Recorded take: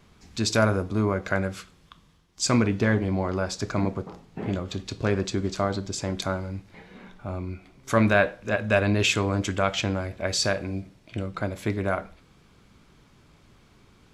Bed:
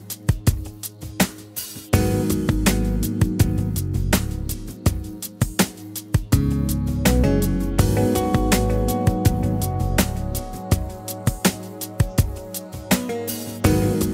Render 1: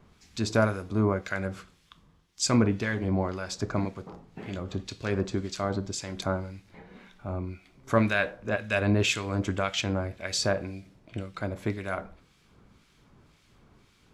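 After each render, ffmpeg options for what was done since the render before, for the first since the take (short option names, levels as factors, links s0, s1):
-filter_complex "[0:a]acrossover=split=1600[s0][s1];[s0]aeval=exprs='val(0)*(1-0.7/2+0.7/2*cos(2*PI*1.9*n/s))':c=same[s2];[s1]aeval=exprs='val(0)*(1-0.7/2-0.7/2*cos(2*PI*1.9*n/s))':c=same[s3];[s2][s3]amix=inputs=2:normalize=0"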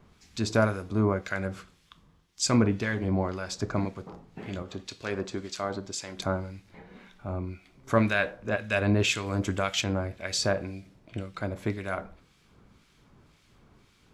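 -filter_complex "[0:a]asettb=1/sr,asplit=3[s0][s1][s2];[s0]atrim=end=4.624[s3];[s1]atrim=start=4.62:end=6.19,asetpts=PTS-STARTPTS,afade=t=in:d=0.004:c=qsin,afade=t=out:st=1.566:d=0.004:c=qsin,lowshelf=f=220:g=-11[s4];[s2]atrim=start=6.186[s5];[s3][s4]acrossfade=d=0.004:c1=hsin:c2=qsin[s6];[s6][s5]acrossfade=d=0.004:c1=qsin:c2=hsin,asettb=1/sr,asplit=3[s7][s8][s9];[s7]atrim=end=9.264[s10];[s8]atrim=start=9.26:end=9.84,asetpts=PTS-STARTPTS,afade=t=in:d=0.004:c=qsin,afade=t=out:st=0.576:d=0.004:c=qsin,highshelf=f=8900:g=10.5[s11];[s9]atrim=start=9.836[s12];[s10][s11]acrossfade=d=0.004:c1=hsin:c2=qsin[s13];[s13][s12]acrossfade=d=0.004:c1=qsin:c2=hsin"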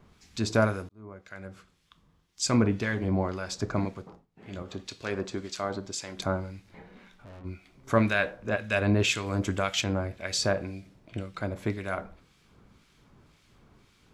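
-filter_complex "[0:a]asplit=3[s0][s1][s2];[s0]afade=t=out:st=6.88:d=0.02[s3];[s1]aeval=exprs='(tanh(178*val(0)+0.35)-tanh(0.35))/178':c=same,afade=t=in:st=6.88:d=0.02,afade=t=out:st=7.44:d=0.02[s4];[s2]afade=t=in:st=7.44:d=0.02[s5];[s3][s4][s5]amix=inputs=3:normalize=0,asplit=4[s6][s7][s8][s9];[s6]atrim=end=0.89,asetpts=PTS-STARTPTS,afade=t=out:st=0.886:d=0.004:c=hsin[s10];[s7]atrim=start=0.89:end=4.27,asetpts=PTS-STARTPTS,afade=t=in:d=1.85,afade=t=out:st=3.06:d=0.32:silence=0.0944061[s11];[s8]atrim=start=4.27:end=4.35,asetpts=PTS-STARTPTS,volume=0.0944[s12];[s9]atrim=start=4.35,asetpts=PTS-STARTPTS,afade=t=in:d=0.32:silence=0.0944061[s13];[s10][s11][s12][s13]concat=n=4:v=0:a=1"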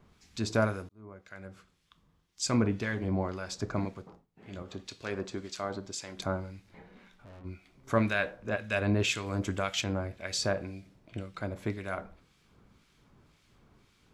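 -af "volume=0.668"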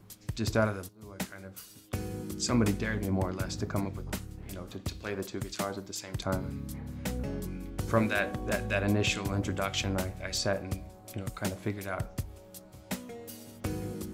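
-filter_complex "[1:a]volume=0.133[s0];[0:a][s0]amix=inputs=2:normalize=0"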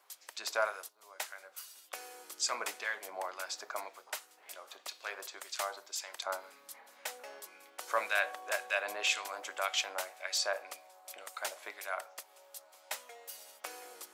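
-af "highpass=f=660:w=0.5412,highpass=f=660:w=1.3066"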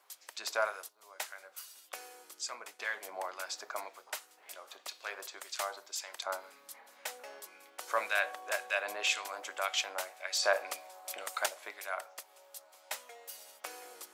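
-filter_complex "[0:a]asettb=1/sr,asplit=3[s0][s1][s2];[s0]atrim=end=10.434[s3];[s1]atrim=start=10.43:end=11.46,asetpts=PTS-STARTPTS,afade=t=in:d=0.004:c=qsin,afade=t=out:st=1.026:d=0.004:c=qsin,acontrast=63[s4];[s2]atrim=start=11.456[s5];[s3][s4]acrossfade=d=0.004:c1=hsin:c2=qsin[s6];[s6][s5]acrossfade=d=0.004:c1=qsin:c2=hsin,asplit=2[s7][s8];[s7]atrim=end=2.79,asetpts=PTS-STARTPTS,afade=t=out:st=1.88:d=0.91:silence=0.177828[s9];[s8]atrim=start=2.79,asetpts=PTS-STARTPTS,afade=t=in:d=0.004:c=hsin:silence=0.177828[s10];[s9][s10]concat=n=2:v=0:a=1"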